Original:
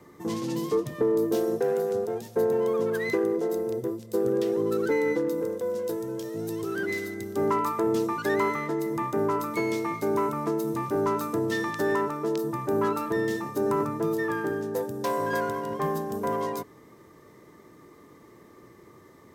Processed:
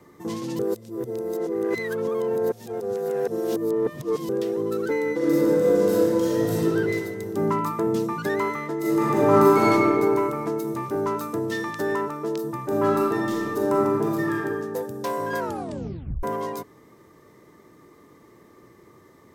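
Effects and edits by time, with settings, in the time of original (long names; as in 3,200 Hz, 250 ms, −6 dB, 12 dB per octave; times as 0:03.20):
0:00.59–0:04.29: reverse
0:05.17–0:06.59: thrown reverb, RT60 2.5 s, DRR −11.5 dB
0:07.34–0:08.28: parametric band 170 Hz +10 dB
0:08.78–0:09.71: thrown reverb, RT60 2.3 s, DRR −10 dB
0:12.64–0:14.33: thrown reverb, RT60 1.4 s, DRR −1.5 dB
0:15.39: tape stop 0.84 s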